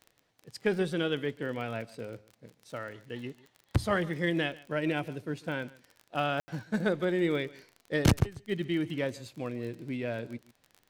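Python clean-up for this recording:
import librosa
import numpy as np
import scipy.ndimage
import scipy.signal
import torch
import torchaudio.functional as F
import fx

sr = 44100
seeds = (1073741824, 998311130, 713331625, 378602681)

y = fx.fix_declick_ar(x, sr, threshold=6.5)
y = fx.fix_ambience(y, sr, seeds[0], print_start_s=0.0, print_end_s=0.5, start_s=6.4, end_s=6.48)
y = fx.fix_echo_inverse(y, sr, delay_ms=143, level_db=-21.0)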